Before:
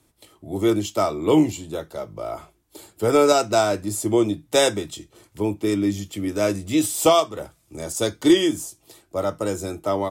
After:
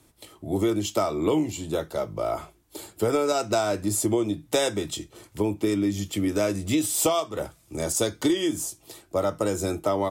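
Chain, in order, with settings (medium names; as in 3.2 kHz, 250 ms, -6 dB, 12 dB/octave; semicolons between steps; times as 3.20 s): compression 6:1, threshold -24 dBFS, peak gain reduction 13.5 dB; trim +3.5 dB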